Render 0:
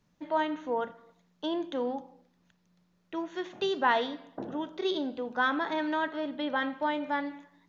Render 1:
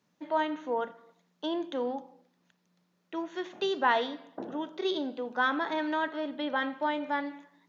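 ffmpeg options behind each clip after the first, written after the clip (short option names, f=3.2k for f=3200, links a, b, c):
-af "highpass=200"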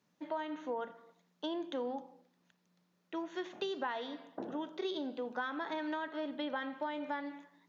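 -af "acompressor=threshold=-31dB:ratio=10,volume=-2.5dB"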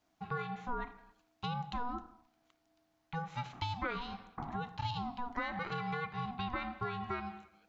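-af "aeval=exprs='val(0)*sin(2*PI*490*n/s)':c=same,volume=3dB"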